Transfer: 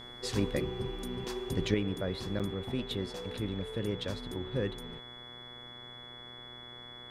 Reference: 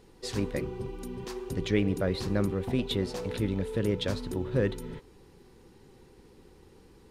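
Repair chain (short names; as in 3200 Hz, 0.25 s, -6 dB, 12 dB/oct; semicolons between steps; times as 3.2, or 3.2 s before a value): de-hum 122 Hz, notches 18; notch 3400 Hz, Q 30; interpolate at 2.39, 6.9 ms; gain correction +6 dB, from 1.74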